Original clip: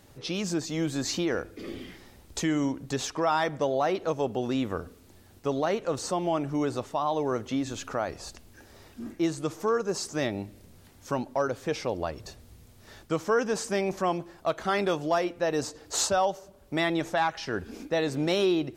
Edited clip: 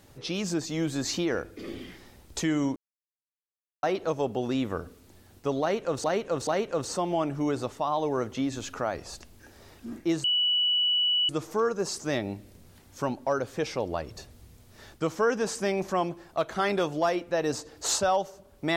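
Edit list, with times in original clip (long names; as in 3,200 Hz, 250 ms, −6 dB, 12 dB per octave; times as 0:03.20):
0:02.76–0:03.83: silence
0:05.61–0:06.04: repeat, 3 plays
0:09.38: insert tone 2,950 Hz −21.5 dBFS 1.05 s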